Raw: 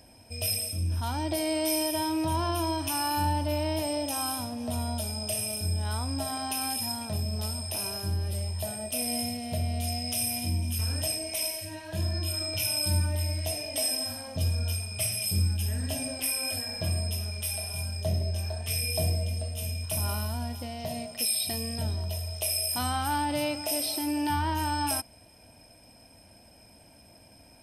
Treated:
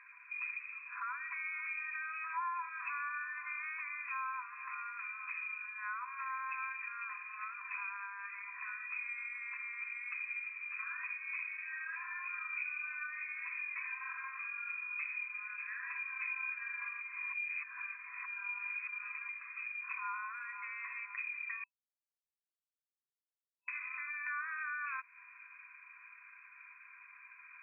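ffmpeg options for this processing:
ffmpeg -i in.wav -filter_complex "[0:a]asplit=5[link_01][link_02][link_03][link_04][link_05];[link_01]atrim=end=17.012[link_06];[link_02]atrim=start=17.008:end=19.292,asetpts=PTS-STARTPTS,areverse[link_07];[link_03]atrim=start=19.288:end=21.64,asetpts=PTS-STARTPTS,afade=type=out:start_time=2.348:duration=0.004:curve=hsin[link_08];[link_04]atrim=start=21.64:end=23.68,asetpts=PTS-STARTPTS,volume=0[link_09];[link_05]atrim=start=23.68,asetpts=PTS-STARTPTS,afade=type=in:duration=0.004:curve=hsin[link_10];[link_06][link_07]acrossfade=duration=0.004:curve1=hsin:curve2=hsin[link_11];[link_08][link_09][link_10]concat=n=3:v=0:a=1[link_12];[link_11][link_12]acrossfade=duration=0.004:curve1=hsin:curve2=hsin,afftfilt=real='re*between(b*sr/4096,990,2600)':imag='im*between(b*sr/4096,990,2600)':win_size=4096:overlap=0.75,acompressor=threshold=-52dB:ratio=3,volume=11.5dB" out.wav

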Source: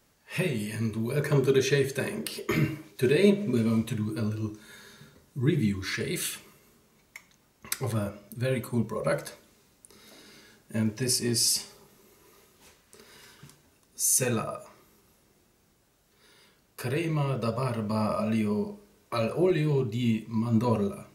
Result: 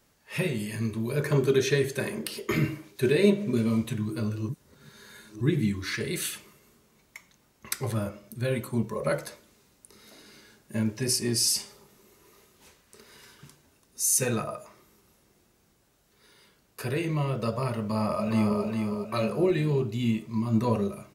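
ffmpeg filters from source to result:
ffmpeg -i in.wav -filter_complex "[0:a]asplit=2[link_01][link_02];[link_02]afade=type=in:start_time=17.86:duration=0.01,afade=type=out:start_time=18.63:duration=0.01,aecho=0:1:410|820|1230|1640|2050:0.630957|0.252383|0.100953|0.0403813|0.0161525[link_03];[link_01][link_03]amix=inputs=2:normalize=0,asplit=3[link_04][link_05][link_06];[link_04]atrim=end=4.492[link_07];[link_05]atrim=start=4.488:end=5.412,asetpts=PTS-STARTPTS,areverse[link_08];[link_06]atrim=start=5.408[link_09];[link_07][link_08]acrossfade=duration=0.004:curve1=hsin:curve2=hsin[link_10];[link_10][link_09]acrossfade=duration=0.004:curve1=hsin:curve2=hsin" out.wav

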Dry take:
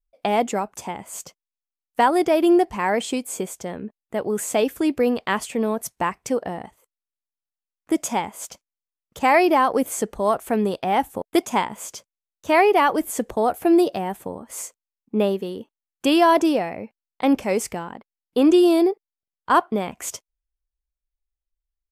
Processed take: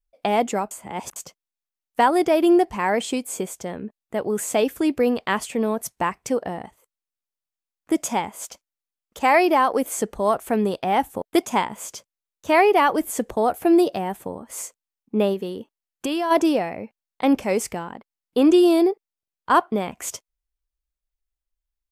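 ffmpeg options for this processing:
ffmpeg -i in.wav -filter_complex "[0:a]asettb=1/sr,asplit=3[link_01][link_02][link_03];[link_01]atrim=end=8.434[link_04];[link_02]atrim=start=8.43:end=9.99,asetpts=PTS-STARTPTS,afade=type=in:duration=0.004:curve=qsin,afade=type=out:start_time=1.556:duration=0.004:curve=qsin,equalizer=frequency=120:width=1.5:gain=-14.5[link_05];[link_03]atrim=start=9.986[link_06];[link_04][link_05]acrossfade=duration=0.004:curve1=hsin:curve2=qsin[link_07];[link_07][link_06]acrossfade=duration=0.004:curve1=qsin:curve2=hsin,asplit=3[link_08][link_09][link_10];[link_08]afade=type=out:start_time=15.33:duration=0.02[link_11];[link_09]acompressor=threshold=-21dB:ratio=6:attack=3.2:release=140:knee=1:detection=peak,afade=type=in:start_time=15.33:duration=0.02,afade=type=out:start_time=16.3:duration=0.02[link_12];[link_10]afade=type=in:start_time=16.3:duration=0.02[link_13];[link_11][link_12][link_13]amix=inputs=3:normalize=0,asplit=3[link_14][link_15][link_16];[link_14]atrim=end=0.712[link_17];[link_15]atrim=start=0.708:end=1.162,asetpts=PTS-STARTPTS,areverse[link_18];[link_16]atrim=start=1.158[link_19];[link_17][link_18]acrossfade=duration=0.004:curve1=hsin:curve2=hsin[link_20];[link_20][link_19]acrossfade=duration=0.004:curve1=hsin:curve2=hsin" out.wav

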